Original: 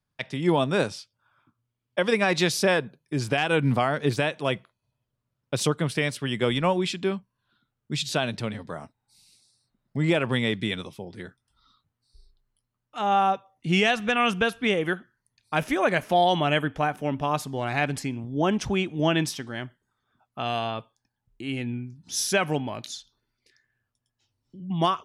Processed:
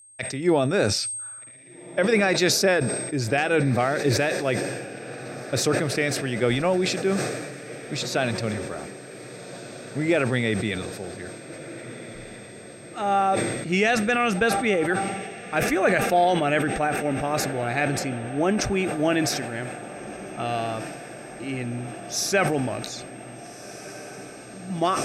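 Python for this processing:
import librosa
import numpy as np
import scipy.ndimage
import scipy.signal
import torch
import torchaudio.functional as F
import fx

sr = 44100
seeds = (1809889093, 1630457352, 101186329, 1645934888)

y = fx.graphic_eq_31(x, sr, hz=(160, 250, 1000, 3150, 10000), db=(-10, -3, -12, -12, -8))
y = y + 10.0 ** (-51.0 / 20.0) * np.sin(2.0 * np.pi * 8400.0 * np.arange(len(y)) / sr)
y = fx.echo_diffused(y, sr, ms=1655, feedback_pct=71, wet_db=-15)
y = fx.sustainer(y, sr, db_per_s=38.0)
y = y * 10.0 ** (2.5 / 20.0)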